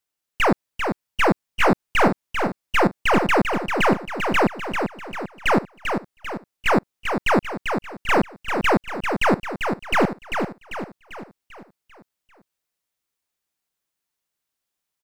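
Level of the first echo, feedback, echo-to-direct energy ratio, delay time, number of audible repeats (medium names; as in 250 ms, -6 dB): -6.0 dB, 48%, -5.0 dB, 394 ms, 5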